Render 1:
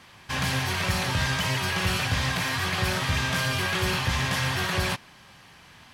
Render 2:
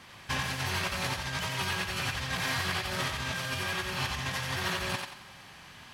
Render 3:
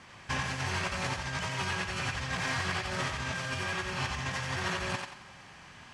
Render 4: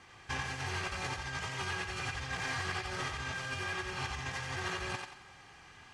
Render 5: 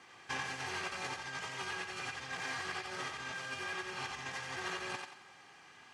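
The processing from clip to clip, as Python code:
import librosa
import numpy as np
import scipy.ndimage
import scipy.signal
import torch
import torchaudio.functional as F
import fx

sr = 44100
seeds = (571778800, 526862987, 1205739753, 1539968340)

y1 = fx.over_compress(x, sr, threshold_db=-29.0, ratio=-0.5)
y1 = fx.echo_thinned(y1, sr, ms=90, feedback_pct=37, hz=420.0, wet_db=-3.5)
y1 = F.gain(torch.from_numpy(y1), -4.0).numpy()
y2 = scipy.signal.sosfilt(scipy.signal.butter(4, 8500.0, 'lowpass', fs=sr, output='sos'), y1)
y2 = fx.peak_eq(y2, sr, hz=3800.0, db=-5.5, octaves=0.77)
y3 = y2 + 0.46 * np.pad(y2, (int(2.5 * sr / 1000.0), 0))[:len(y2)]
y3 = F.gain(torch.from_numpy(y3), -5.0).numpy()
y4 = scipy.signal.sosfilt(scipy.signal.butter(2, 200.0, 'highpass', fs=sr, output='sos'), y3)
y4 = fx.rider(y4, sr, range_db=10, speed_s=2.0)
y4 = F.gain(torch.from_numpy(y4), -2.5).numpy()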